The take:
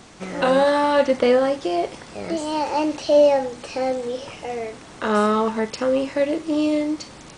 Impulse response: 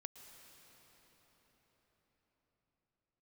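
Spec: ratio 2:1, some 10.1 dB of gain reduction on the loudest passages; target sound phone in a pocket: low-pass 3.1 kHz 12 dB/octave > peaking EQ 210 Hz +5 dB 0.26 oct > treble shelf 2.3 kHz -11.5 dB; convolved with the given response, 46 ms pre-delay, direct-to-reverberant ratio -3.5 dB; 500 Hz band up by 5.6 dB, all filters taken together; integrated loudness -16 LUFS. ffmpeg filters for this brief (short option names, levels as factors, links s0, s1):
-filter_complex "[0:a]equalizer=f=500:t=o:g=7,acompressor=threshold=0.0562:ratio=2,asplit=2[s0][s1];[1:a]atrim=start_sample=2205,adelay=46[s2];[s1][s2]afir=irnorm=-1:irlink=0,volume=2.66[s3];[s0][s3]amix=inputs=2:normalize=0,lowpass=3100,equalizer=f=210:t=o:w=0.26:g=5,highshelf=f=2300:g=-11.5,volume=1.41"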